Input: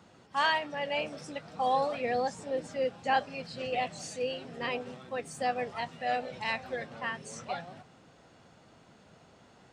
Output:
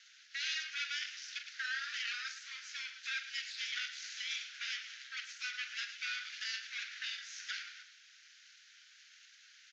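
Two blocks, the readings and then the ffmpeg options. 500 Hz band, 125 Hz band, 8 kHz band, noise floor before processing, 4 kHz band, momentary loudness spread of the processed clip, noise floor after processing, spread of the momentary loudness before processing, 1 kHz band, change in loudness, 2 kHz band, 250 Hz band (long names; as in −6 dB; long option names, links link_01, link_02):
below −40 dB, below −40 dB, +1.0 dB, −59 dBFS, +1.5 dB, 21 LU, −62 dBFS, 10 LU, −23.5 dB, −6.5 dB, −2.5 dB, below −40 dB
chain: -filter_complex "[0:a]acrossover=split=4700[link_01][link_02];[link_02]acompressor=threshold=-56dB:ratio=4:attack=1:release=60[link_03];[link_01][link_03]amix=inputs=2:normalize=0,highshelf=frequency=2600:gain=9,alimiter=level_in=2dB:limit=-24dB:level=0:latency=1:release=206,volume=-2dB,aecho=1:1:43.73|110.8:0.355|0.316,aeval=exprs='abs(val(0))':channel_layout=same,asuperpass=centerf=3200:order=20:qfactor=0.6,volume=3dB"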